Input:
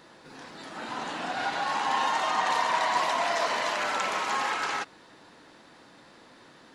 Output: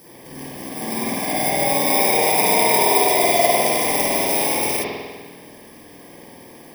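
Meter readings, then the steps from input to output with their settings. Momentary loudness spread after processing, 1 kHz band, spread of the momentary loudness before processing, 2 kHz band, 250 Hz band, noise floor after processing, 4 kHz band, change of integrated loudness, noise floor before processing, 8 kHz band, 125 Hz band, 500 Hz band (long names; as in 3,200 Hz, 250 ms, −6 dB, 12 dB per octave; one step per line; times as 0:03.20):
17 LU, +5.5 dB, 15 LU, +6.0 dB, +16.0 dB, −43 dBFS, +8.5 dB, +11.0 dB, −54 dBFS, +19.0 dB, +17.5 dB, +14.0 dB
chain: samples in bit-reversed order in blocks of 32 samples
spring reverb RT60 1.5 s, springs 49 ms, chirp 30 ms, DRR −7.5 dB
level +6.5 dB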